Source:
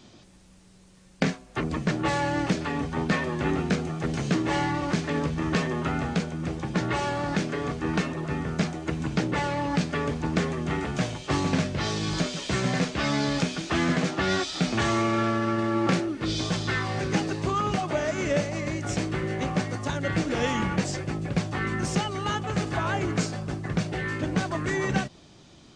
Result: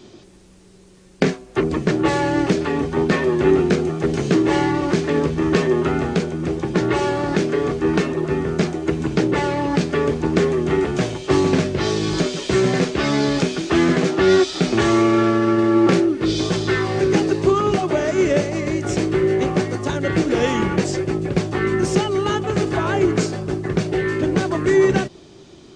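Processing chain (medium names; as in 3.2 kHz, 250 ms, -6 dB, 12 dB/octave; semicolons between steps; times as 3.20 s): peaking EQ 380 Hz +12 dB 0.49 oct; trim +4.5 dB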